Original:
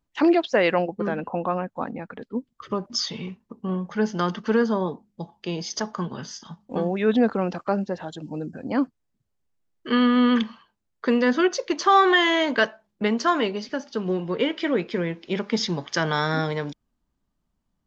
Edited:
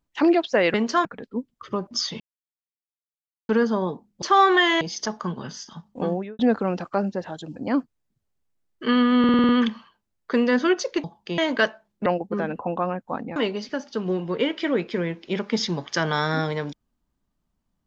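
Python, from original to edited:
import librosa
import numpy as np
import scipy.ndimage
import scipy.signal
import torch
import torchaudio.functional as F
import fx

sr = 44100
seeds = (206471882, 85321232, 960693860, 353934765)

y = fx.studio_fade_out(x, sr, start_s=6.84, length_s=0.29)
y = fx.edit(y, sr, fx.swap(start_s=0.74, length_s=1.3, other_s=13.05, other_length_s=0.31),
    fx.silence(start_s=3.19, length_s=1.29),
    fx.swap(start_s=5.21, length_s=0.34, other_s=11.78, other_length_s=0.59),
    fx.cut(start_s=8.3, length_s=0.3),
    fx.stutter(start_s=10.23, slice_s=0.05, count=7), tone=tone)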